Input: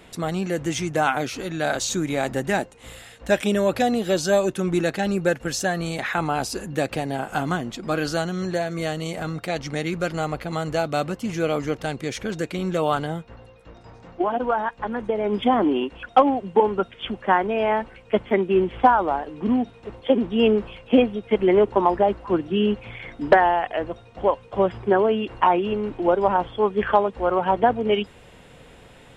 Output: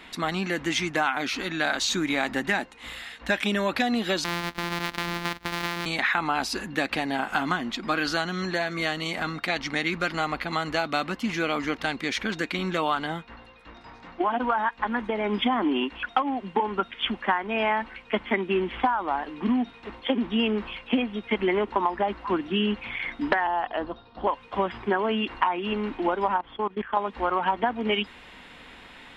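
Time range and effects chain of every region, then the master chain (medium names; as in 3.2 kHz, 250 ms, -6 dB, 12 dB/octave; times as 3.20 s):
4.24–5.86 s: sorted samples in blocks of 256 samples + gate -34 dBFS, range -9 dB + compression 5:1, threshold -25 dBFS
23.47–24.27 s: steep low-pass 5.3 kHz 96 dB/octave + peaking EQ 2.2 kHz -14.5 dB 0.79 oct
26.38–26.97 s: low-pass 2.8 kHz 6 dB/octave + level held to a coarse grid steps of 23 dB
whole clip: graphic EQ 125/250/500/1000/2000/4000/8000 Hz -10/+7/-6/+7/+8/+8/-4 dB; compression 10:1, threshold -17 dBFS; trim -3 dB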